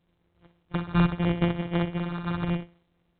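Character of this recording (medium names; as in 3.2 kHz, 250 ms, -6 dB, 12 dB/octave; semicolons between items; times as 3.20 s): a buzz of ramps at a fixed pitch in blocks of 256 samples; phasing stages 4, 0.78 Hz, lowest notch 590–1900 Hz; aliases and images of a low sample rate 2.6 kHz, jitter 0%; A-law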